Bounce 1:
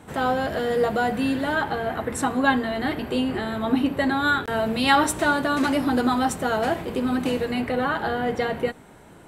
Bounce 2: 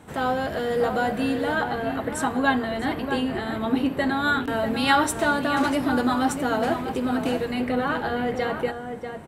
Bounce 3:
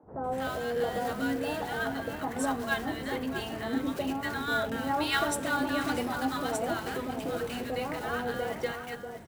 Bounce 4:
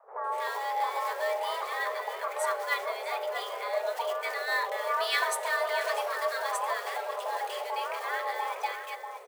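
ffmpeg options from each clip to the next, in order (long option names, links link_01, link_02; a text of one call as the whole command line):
ffmpeg -i in.wav -filter_complex "[0:a]asplit=2[link_01][link_02];[link_02]adelay=641.4,volume=-7dB,highshelf=frequency=4000:gain=-14.4[link_03];[link_01][link_03]amix=inputs=2:normalize=0,volume=-1.5dB" out.wav
ffmpeg -i in.wav -filter_complex "[0:a]acrusher=bits=5:mode=log:mix=0:aa=0.000001,acrossover=split=250|990[link_01][link_02][link_03];[link_01]adelay=30[link_04];[link_03]adelay=240[link_05];[link_04][link_02][link_05]amix=inputs=3:normalize=0,volume=-5.5dB" out.wav
ffmpeg -i in.wav -af "afreqshift=350" out.wav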